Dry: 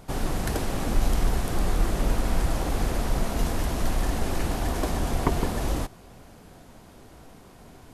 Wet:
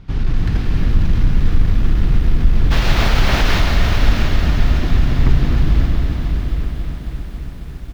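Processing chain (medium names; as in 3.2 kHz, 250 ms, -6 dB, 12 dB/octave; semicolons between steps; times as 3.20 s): amplifier tone stack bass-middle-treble 6-0-2; hard clipper -35 dBFS, distortion -10 dB; 2.70–3.58 s: added noise white -36 dBFS; distance through air 270 m; delay 683 ms -9.5 dB; reverberation RT60 4.5 s, pre-delay 31 ms, DRR 1.5 dB; loudness maximiser +27.5 dB; bit-crushed delay 273 ms, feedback 80%, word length 7-bit, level -10.5 dB; trim -4 dB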